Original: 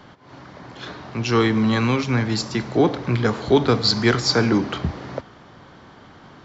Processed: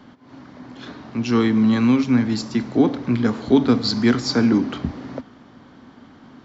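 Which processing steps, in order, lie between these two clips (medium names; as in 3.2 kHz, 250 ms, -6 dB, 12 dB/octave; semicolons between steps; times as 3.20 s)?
peaking EQ 250 Hz +14 dB 0.45 oct; trim -4.5 dB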